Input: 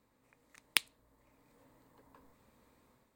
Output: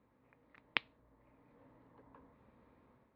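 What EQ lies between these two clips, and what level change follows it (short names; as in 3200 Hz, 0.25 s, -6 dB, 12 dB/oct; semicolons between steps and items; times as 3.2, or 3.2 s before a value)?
HPF 47 Hz; LPF 5300 Hz 24 dB/oct; air absorption 480 m; +3.0 dB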